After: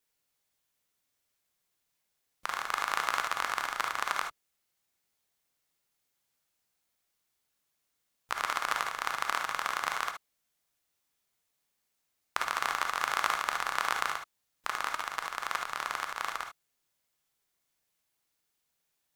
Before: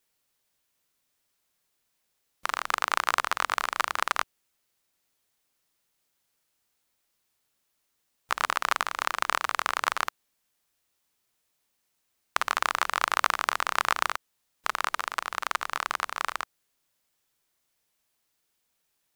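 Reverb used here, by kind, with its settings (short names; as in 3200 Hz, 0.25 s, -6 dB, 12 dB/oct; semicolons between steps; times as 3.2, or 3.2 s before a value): non-linear reverb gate 90 ms rising, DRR 3.5 dB; gain -5.5 dB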